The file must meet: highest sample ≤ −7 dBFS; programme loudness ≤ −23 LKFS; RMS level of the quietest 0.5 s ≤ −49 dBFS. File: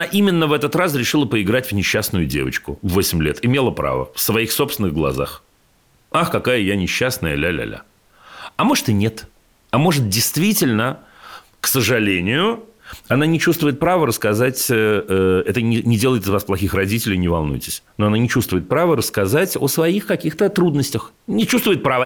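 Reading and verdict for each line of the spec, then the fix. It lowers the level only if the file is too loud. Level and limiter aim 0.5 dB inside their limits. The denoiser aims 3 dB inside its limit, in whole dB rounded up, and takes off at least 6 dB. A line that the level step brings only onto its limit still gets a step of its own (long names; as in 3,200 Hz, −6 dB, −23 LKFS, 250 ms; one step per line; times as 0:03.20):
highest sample −5.0 dBFS: out of spec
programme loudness −18.0 LKFS: out of spec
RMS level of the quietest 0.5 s −57 dBFS: in spec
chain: level −5.5 dB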